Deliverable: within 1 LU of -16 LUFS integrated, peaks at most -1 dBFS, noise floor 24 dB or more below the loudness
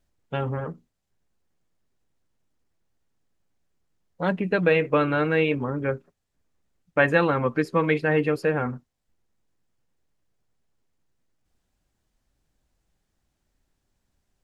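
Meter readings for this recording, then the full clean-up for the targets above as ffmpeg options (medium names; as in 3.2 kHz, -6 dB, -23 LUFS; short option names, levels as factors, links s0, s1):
loudness -24.0 LUFS; peak level -6.0 dBFS; loudness target -16.0 LUFS
-> -af "volume=2.51,alimiter=limit=0.891:level=0:latency=1"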